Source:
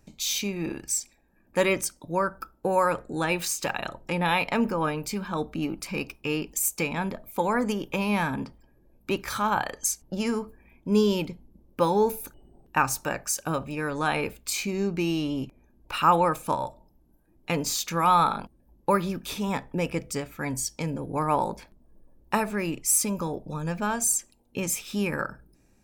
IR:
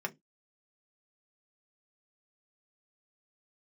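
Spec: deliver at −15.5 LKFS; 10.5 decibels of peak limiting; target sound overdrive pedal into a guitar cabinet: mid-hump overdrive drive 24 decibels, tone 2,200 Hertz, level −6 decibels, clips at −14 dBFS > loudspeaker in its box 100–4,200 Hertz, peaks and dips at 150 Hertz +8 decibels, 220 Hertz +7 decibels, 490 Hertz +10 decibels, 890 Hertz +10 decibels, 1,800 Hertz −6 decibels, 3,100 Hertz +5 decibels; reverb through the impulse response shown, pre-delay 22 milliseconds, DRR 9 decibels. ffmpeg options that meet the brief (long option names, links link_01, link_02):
-filter_complex "[0:a]alimiter=limit=-17dB:level=0:latency=1,asplit=2[link_01][link_02];[1:a]atrim=start_sample=2205,adelay=22[link_03];[link_02][link_03]afir=irnorm=-1:irlink=0,volume=-12.5dB[link_04];[link_01][link_04]amix=inputs=2:normalize=0,asplit=2[link_05][link_06];[link_06]highpass=frequency=720:poles=1,volume=24dB,asoftclip=type=tanh:threshold=-14dB[link_07];[link_05][link_07]amix=inputs=2:normalize=0,lowpass=frequency=2200:poles=1,volume=-6dB,highpass=100,equalizer=frequency=150:width_type=q:width=4:gain=8,equalizer=frequency=220:width_type=q:width=4:gain=7,equalizer=frequency=490:width_type=q:width=4:gain=10,equalizer=frequency=890:width_type=q:width=4:gain=10,equalizer=frequency=1800:width_type=q:width=4:gain=-6,equalizer=frequency=3100:width_type=q:width=4:gain=5,lowpass=frequency=4200:width=0.5412,lowpass=frequency=4200:width=1.3066,volume=3.5dB"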